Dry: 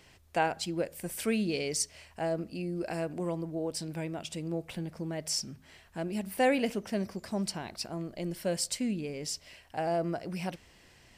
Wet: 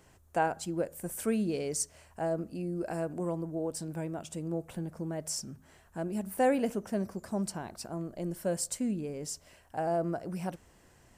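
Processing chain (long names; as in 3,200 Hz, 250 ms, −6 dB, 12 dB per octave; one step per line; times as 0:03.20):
flat-topped bell 3,200 Hz −9.5 dB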